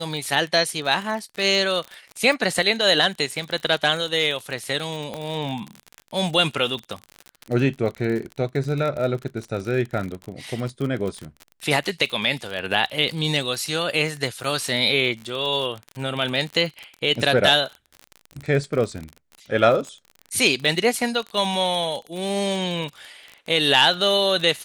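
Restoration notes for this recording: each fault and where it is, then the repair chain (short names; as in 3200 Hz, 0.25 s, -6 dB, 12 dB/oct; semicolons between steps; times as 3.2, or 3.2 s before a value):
crackle 43/s -27 dBFS
5.14 pop -17 dBFS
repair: de-click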